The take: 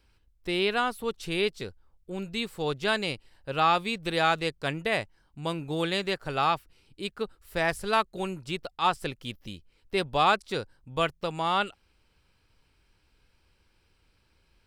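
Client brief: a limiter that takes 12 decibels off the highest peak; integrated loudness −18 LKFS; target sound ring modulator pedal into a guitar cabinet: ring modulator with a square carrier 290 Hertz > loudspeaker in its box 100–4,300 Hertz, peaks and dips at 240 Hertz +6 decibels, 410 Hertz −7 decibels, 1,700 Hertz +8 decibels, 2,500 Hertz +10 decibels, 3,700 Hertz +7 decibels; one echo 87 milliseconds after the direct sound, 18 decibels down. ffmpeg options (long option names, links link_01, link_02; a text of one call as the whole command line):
ffmpeg -i in.wav -af "alimiter=limit=-22dB:level=0:latency=1,aecho=1:1:87:0.126,aeval=exprs='val(0)*sgn(sin(2*PI*290*n/s))':channel_layout=same,highpass=100,equalizer=frequency=240:width_type=q:width=4:gain=6,equalizer=frequency=410:width_type=q:width=4:gain=-7,equalizer=frequency=1700:width_type=q:width=4:gain=8,equalizer=frequency=2500:width_type=q:width=4:gain=10,equalizer=frequency=3700:width_type=q:width=4:gain=7,lowpass=frequency=4300:width=0.5412,lowpass=frequency=4300:width=1.3066,volume=12.5dB" out.wav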